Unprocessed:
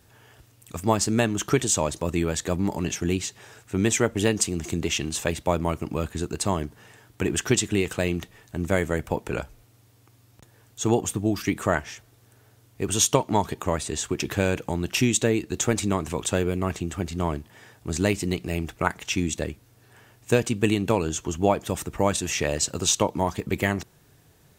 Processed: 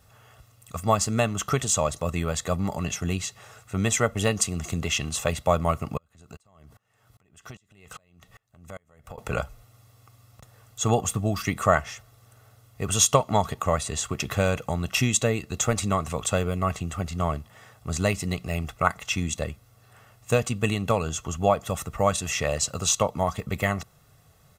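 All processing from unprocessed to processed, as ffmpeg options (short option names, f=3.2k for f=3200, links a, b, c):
-filter_complex "[0:a]asettb=1/sr,asplit=3[a][b][c];[a]atrim=end=5.974[d];[b]atrim=start=5.97:end=9.18,asetpts=PTS-STARTPTS,afade=t=in:d=0.004:c=qsin,afade=t=out:st=3.206:d=0.004:c=qsin,acompressor=threshold=-34dB:ratio=6:attack=3.2:release=140:knee=1:detection=peak,aeval=exprs='val(0)*pow(10,-33*if(lt(mod(-2.5*n/s,1),2*abs(-2.5)/1000),1-mod(-2.5*n/s,1)/(2*abs(-2.5)/1000),(mod(-2.5*n/s,1)-2*abs(-2.5)/1000)/(1-2*abs(-2.5)/1000))/20)':c=same[e];[c]atrim=start=9.176[f];[d][e]acrossfade=d=0.004:c1=hsin:c2=qsin[g];[g][f]acrossfade=d=0.004:c1=qsin:c2=hsin,equalizer=f=1.1k:w=6.5:g=12,aecho=1:1:1.5:0.64,dynaudnorm=f=720:g=17:m=11.5dB,volume=-2.5dB"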